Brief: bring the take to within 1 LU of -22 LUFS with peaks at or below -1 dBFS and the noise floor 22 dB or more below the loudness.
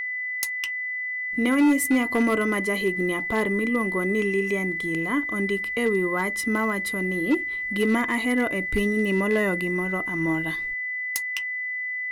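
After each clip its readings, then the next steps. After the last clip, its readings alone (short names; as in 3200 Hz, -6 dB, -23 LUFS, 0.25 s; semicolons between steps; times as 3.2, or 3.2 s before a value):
clipped 0.7%; flat tops at -15.0 dBFS; steady tone 2000 Hz; tone level -27 dBFS; loudness -24.0 LUFS; peak -15.0 dBFS; loudness target -22.0 LUFS
-> clip repair -15 dBFS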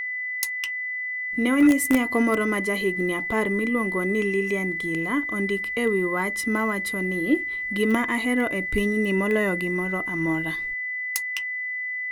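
clipped 0.0%; steady tone 2000 Hz; tone level -27 dBFS
-> notch 2000 Hz, Q 30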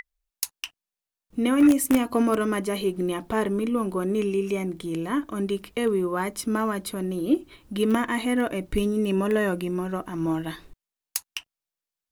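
steady tone none; loudness -25.5 LUFS; peak -5.5 dBFS; loudness target -22.0 LUFS
-> gain +3.5 dB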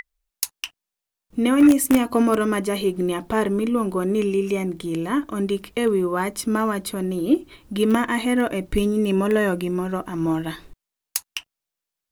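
loudness -22.0 LUFS; peak -2.0 dBFS; noise floor -86 dBFS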